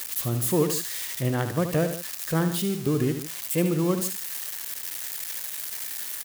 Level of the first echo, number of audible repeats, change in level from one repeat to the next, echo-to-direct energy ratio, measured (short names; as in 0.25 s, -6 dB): -9.0 dB, 2, -5.0 dB, -8.0 dB